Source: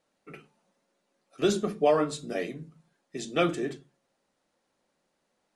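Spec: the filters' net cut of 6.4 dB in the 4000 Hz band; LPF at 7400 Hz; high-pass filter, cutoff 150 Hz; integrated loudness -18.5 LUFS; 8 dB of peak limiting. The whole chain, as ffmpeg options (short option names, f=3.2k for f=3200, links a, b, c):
-af "highpass=150,lowpass=7.4k,equalizer=f=4k:t=o:g=-8,volume=14.5dB,alimiter=limit=-5dB:level=0:latency=1"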